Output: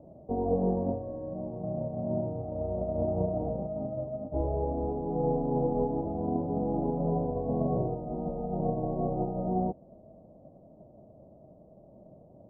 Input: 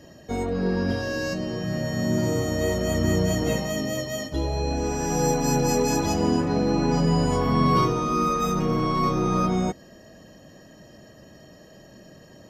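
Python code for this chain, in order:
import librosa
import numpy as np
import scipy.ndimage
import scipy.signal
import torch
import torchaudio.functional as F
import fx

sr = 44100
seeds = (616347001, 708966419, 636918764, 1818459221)

y = fx.envelope_flatten(x, sr, power=0.1)
y = scipy.signal.sosfilt(scipy.signal.butter(8, 720.0, 'lowpass', fs=sr, output='sos'), y)
y = fx.rider(y, sr, range_db=3, speed_s=2.0)
y = y * librosa.db_to_amplitude(8.0)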